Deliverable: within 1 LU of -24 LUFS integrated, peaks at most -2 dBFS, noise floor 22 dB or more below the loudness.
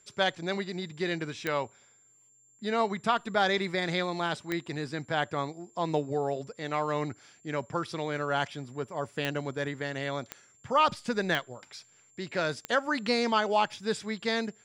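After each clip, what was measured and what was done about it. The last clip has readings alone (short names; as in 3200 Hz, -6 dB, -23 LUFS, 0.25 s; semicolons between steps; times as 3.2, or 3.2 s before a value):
clicks 6; steady tone 7300 Hz; tone level -60 dBFS; loudness -31.0 LUFS; peak -12.5 dBFS; loudness target -24.0 LUFS
-> de-click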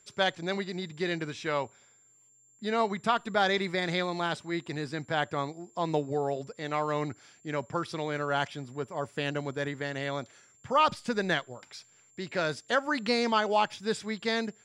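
clicks 0; steady tone 7300 Hz; tone level -60 dBFS
-> notch 7300 Hz, Q 30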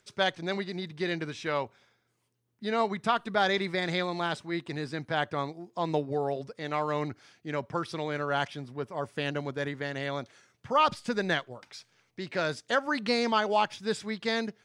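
steady tone none; loudness -31.0 LUFS; peak -12.5 dBFS; loudness target -24.0 LUFS
-> gain +7 dB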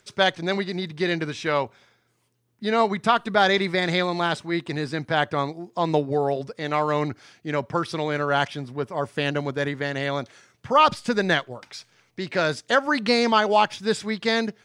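loudness -24.0 LUFS; peak -5.5 dBFS; noise floor -68 dBFS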